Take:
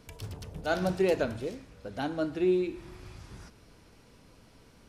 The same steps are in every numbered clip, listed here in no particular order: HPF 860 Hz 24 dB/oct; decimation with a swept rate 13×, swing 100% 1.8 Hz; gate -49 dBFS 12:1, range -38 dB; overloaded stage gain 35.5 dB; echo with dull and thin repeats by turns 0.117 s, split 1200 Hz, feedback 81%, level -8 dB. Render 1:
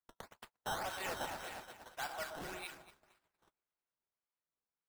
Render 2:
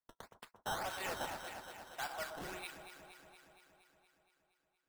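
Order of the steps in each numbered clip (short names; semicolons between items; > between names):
HPF > decimation with a swept rate > echo with dull and thin repeats by turns > gate > overloaded stage; HPF > gate > decimation with a swept rate > echo with dull and thin repeats by turns > overloaded stage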